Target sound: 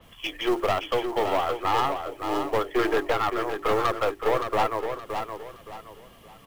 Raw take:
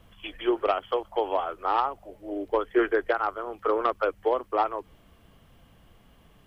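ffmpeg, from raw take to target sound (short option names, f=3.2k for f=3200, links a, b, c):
-filter_complex "[0:a]highshelf=f=2.5k:g=5,acrossover=split=120[a][b];[b]acontrast=61[c];[a][c]amix=inputs=2:normalize=0,bandreject=f=50:t=h:w=6,bandreject=f=100:t=h:w=6,bandreject=f=150:t=h:w=6,bandreject=f=200:t=h:w=6,bandreject=f=250:t=h:w=6,bandreject=f=300:t=h:w=6,bandreject=f=350:t=h:w=6,bandreject=f=400:t=h:w=6,aeval=exprs='(tanh(8.91*val(0)+0.4)-tanh(0.4))/8.91':c=same,acrusher=bits=5:mode=log:mix=0:aa=0.000001,bandreject=f=1.5k:w=12,asplit=2[d][e];[e]aecho=0:1:569|1138|1707|2276:0.447|0.138|0.0429|0.0133[f];[d][f]amix=inputs=2:normalize=0,adynamicequalizer=threshold=0.00708:dfrequency=4500:dqfactor=0.7:tfrequency=4500:tqfactor=0.7:attack=5:release=100:ratio=0.375:range=2:mode=cutabove:tftype=highshelf"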